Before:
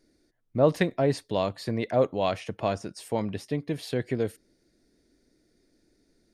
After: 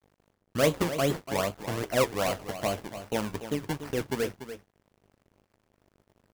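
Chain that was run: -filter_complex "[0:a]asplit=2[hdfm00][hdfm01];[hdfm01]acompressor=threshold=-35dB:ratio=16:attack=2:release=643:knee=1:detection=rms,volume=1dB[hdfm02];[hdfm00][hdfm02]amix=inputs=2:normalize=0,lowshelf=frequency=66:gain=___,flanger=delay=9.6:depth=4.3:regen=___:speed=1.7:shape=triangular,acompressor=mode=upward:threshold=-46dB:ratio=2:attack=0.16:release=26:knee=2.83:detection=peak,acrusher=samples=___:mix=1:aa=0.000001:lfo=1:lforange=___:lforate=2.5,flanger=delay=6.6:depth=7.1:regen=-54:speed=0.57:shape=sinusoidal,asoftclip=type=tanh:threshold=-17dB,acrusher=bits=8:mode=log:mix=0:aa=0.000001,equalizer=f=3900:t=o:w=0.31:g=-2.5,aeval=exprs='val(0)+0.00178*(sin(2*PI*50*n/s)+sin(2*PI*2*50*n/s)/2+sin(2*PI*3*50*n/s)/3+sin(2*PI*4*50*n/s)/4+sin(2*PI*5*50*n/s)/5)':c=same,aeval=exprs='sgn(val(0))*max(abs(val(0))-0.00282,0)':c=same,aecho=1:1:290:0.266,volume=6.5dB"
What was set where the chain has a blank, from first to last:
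-6.5, -80, 24, 24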